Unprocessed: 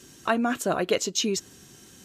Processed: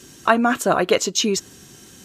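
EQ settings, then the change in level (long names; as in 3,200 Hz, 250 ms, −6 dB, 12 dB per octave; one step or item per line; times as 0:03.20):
dynamic equaliser 1,100 Hz, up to +5 dB, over −38 dBFS, Q 1.1
+5.5 dB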